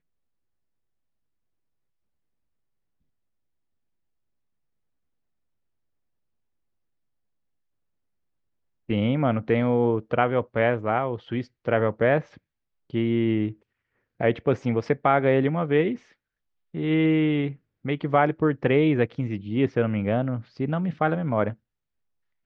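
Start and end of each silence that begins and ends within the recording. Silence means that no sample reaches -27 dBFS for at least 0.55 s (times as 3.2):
12.2–12.94
13.49–14.21
15.95–16.75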